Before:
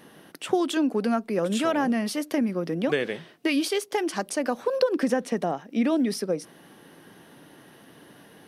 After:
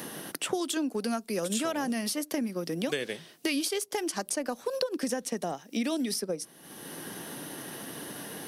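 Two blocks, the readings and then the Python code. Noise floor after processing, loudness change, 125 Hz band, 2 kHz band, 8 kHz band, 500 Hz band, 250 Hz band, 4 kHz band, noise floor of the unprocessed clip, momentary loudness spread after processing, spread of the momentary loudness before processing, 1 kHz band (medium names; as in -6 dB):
-55 dBFS, -6.0 dB, -5.5 dB, -4.5 dB, +4.0 dB, -6.5 dB, -6.5 dB, -0.5 dB, -53 dBFS, 10 LU, 5 LU, -6.5 dB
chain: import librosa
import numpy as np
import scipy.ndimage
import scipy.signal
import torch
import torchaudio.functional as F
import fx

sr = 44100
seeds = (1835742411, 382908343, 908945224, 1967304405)

y = fx.bass_treble(x, sr, bass_db=0, treble_db=13)
y = fx.transient(y, sr, attack_db=0, sustain_db=-4)
y = fx.band_squash(y, sr, depth_pct=70)
y = y * 10.0 ** (-6.5 / 20.0)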